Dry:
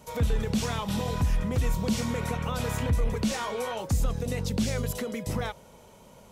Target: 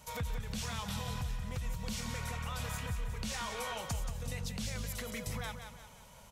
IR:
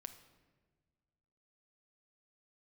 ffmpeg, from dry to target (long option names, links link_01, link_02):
-af "equalizer=frequency=330:width=0.73:gain=-14.5,acompressor=threshold=-35dB:ratio=6,aecho=1:1:178|356|534|712|890:0.398|0.175|0.0771|0.0339|0.0149"